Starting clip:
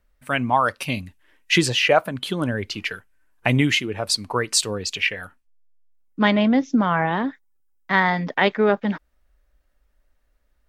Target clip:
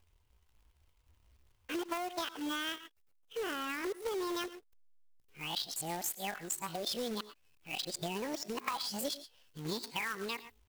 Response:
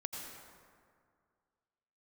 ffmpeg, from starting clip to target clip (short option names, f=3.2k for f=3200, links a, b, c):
-filter_complex "[0:a]areverse,asplit=2[a][b];[b]adynamicequalizer=threshold=0.00794:dfrequency=7400:dqfactor=3.5:tfrequency=7400:tqfactor=3.5:attack=5:release=100:ratio=0.375:range=2:mode=boostabove:tftype=bell[c];[1:a]atrim=start_sample=2205,afade=t=out:st=0.18:d=0.01,atrim=end_sample=8379[d];[c][d]afir=irnorm=-1:irlink=0,volume=-7.5dB[e];[a][e]amix=inputs=2:normalize=0,asetrate=74167,aresample=44100,atempo=0.594604,acompressor=threshold=-27dB:ratio=10,acrusher=bits=2:mode=log:mix=0:aa=0.000001,volume=-7.5dB"